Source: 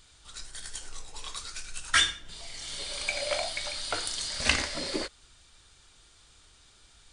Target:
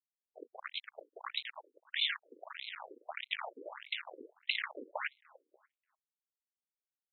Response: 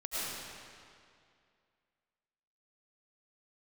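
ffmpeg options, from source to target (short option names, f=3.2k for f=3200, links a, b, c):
-filter_complex "[0:a]areverse,acompressor=threshold=-39dB:ratio=20,areverse,acrusher=bits=5:mix=0:aa=0.000001,asplit=2[a][b];[b]adelay=293,lowpass=f=2.4k:p=1,volume=-20dB,asplit=2[c][d];[d]adelay=293,lowpass=f=2.4k:p=1,volume=0.33,asplit=2[e][f];[f]adelay=293,lowpass=f=2.4k:p=1,volume=0.33[g];[a][c][e][g]amix=inputs=4:normalize=0,afftfilt=real='re*between(b*sr/1024,360*pow(3000/360,0.5+0.5*sin(2*PI*1.6*pts/sr))/1.41,360*pow(3000/360,0.5+0.5*sin(2*PI*1.6*pts/sr))*1.41)':imag='im*between(b*sr/1024,360*pow(3000/360,0.5+0.5*sin(2*PI*1.6*pts/sr))/1.41,360*pow(3000/360,0.5+0.5*sin(2*PI*1.6*pts/sr))*1.41)':win_size=1024:overlap=0.75,volume=13dB"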